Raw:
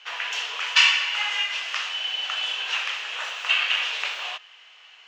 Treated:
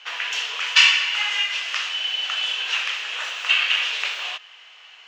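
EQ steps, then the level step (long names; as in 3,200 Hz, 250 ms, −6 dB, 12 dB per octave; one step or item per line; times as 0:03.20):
dynamic equaliser 790 Hz, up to −5 dB, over −41 dBFS, Q 0.89
+3.5 dB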